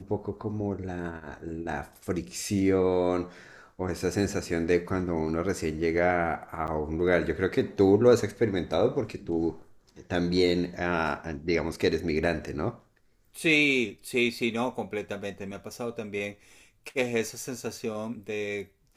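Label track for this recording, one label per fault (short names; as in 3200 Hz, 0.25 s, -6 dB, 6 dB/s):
6.670000	6.680000	gap 9.3 ms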